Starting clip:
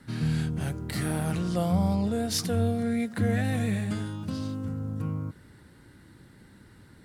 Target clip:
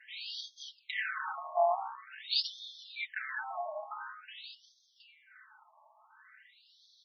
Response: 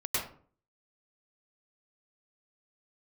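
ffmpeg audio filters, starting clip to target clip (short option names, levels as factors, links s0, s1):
-af "tremolo=f=130:d=0.519,aecho=1:1:4.6:0.78,afftfilt=real='re*between(b*sr/1024,830*pow(4600/830,0.5+0.5*sin(2*PI*0.47*pts/sr))/1.41,830*pow(4600/830,0.5+0.5*sin(2*PI*0.47*pts/sr))*1.41)':imag='im*between(b*sr/1024,830*pow(4600/830,0.5+0.5*sin(2*PI*0.47*pts/sr))/1.41,830*pow(4600/830,0.5+0.5*sin(2*PI*0.47*pts/sr))*1.41)':win_size=1024:overlap=0.75,volume=2.11"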